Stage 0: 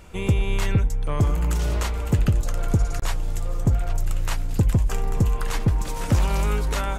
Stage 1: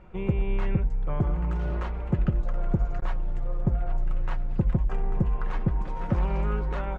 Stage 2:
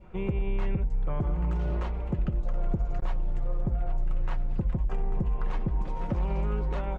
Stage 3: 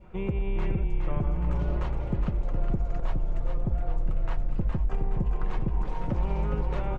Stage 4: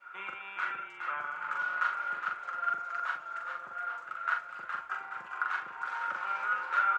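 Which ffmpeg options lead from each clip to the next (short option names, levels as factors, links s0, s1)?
-af "lowpass=1600,aecho=1:1:5.5:0.47,volume=0.596"
-af "adynamicequalizer=threshold=0.002:dfrequency=1500:dqfactor=1.5:tfrequency=1500:tqfactor=1.5:attack=5:release=100:ratio=0.375:range=3:mode=cutabove:tftype=bell,alimiter=limit=0.1:level=0:latency=1:release=74"
-filter_complex "[0:a]asplit=5[s0][s1][s2][s3][s4];[s1]adelay=415,afreqshift=-35,volume=0.531[s5];[s2]adelay=830,afreqshift=-70,volume=0.186[s6];[s3]adelay=1245,afreqshift=-105,volume=0.0653[s7];[s4]adelay=1660,afreqshift=-140,volume=0.0226[s8];[s0][s5][s6][s7][s8]amix=inputs=5:normalize=0"
-filter_complex "[0:a]highpass=f=1400:t=q:w=14,asplit=2[s0][s1];[s1]adelay=42,volume=0.596[s2];[s0][s2]amix=inputs=2:normalize=0"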